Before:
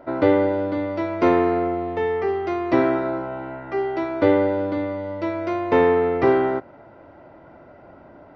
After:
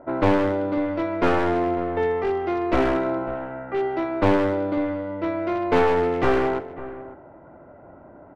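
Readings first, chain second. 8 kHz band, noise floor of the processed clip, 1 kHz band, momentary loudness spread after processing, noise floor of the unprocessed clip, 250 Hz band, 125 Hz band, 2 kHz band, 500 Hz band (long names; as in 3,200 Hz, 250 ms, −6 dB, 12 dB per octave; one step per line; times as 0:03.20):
can't be measured, −47 dBFS, 0.0 dB, 10 LU, −47 dBFS, −1.5 dB, +1.0 dB, 0.0 dB, −2.0 dB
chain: wavefolder on the positive side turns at −17.5 dBFS
slap from a distant wall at 94 metres, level −15 dB
low-pass that shuts in the quiet parts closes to 1,400 Hz, open at −16 dBFS
high-shelf EQ 4,800 Hz −7.5 dB
on a send: single-tap delay 149 ms −17.5 dB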